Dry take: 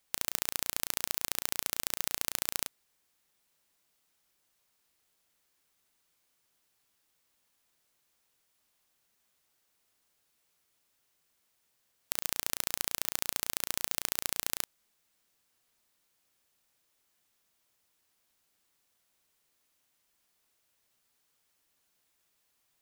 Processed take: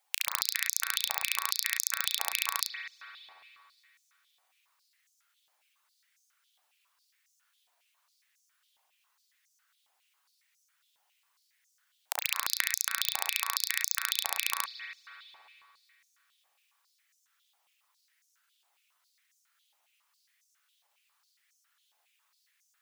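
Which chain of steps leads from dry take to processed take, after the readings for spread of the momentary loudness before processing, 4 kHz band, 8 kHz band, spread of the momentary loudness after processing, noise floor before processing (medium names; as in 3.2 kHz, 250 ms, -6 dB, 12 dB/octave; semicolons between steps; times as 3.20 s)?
3 LU, +6.0 dB, +2.5 dB, 12 LU, -76 dBFS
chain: spectral gate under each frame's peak -10 dB strong; spring tank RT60 2.7 s, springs 57 ms, chirp 20 ms, DRR 0.5 dB; step-sequenced high-pass 7.3 Hz 790–6100 Hz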